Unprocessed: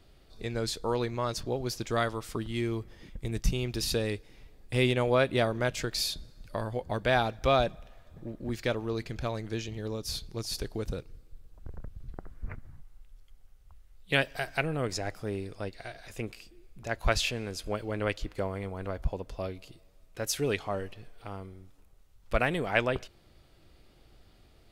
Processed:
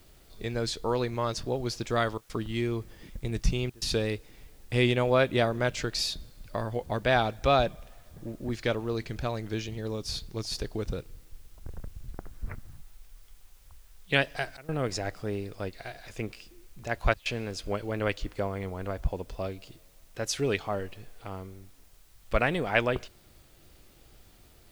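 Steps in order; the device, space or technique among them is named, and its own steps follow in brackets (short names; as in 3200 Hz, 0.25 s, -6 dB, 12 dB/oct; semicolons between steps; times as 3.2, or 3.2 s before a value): worn cassette (LPF 8000 Hz; wow and flutter; level dips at 2.18/3.7/14.57/17.14, 0.115 s -21 dB; white noise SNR 32 dB); gain +1.5 dB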